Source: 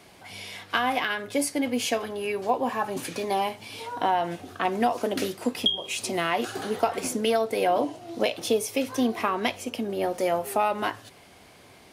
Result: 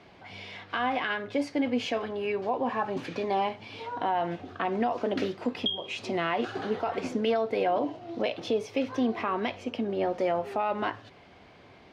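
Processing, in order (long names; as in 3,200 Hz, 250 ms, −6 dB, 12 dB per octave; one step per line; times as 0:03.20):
high-frequency loss of the air 210 metres
brickwall limiter −18 dBFS, peak gain reduction 8.5 dB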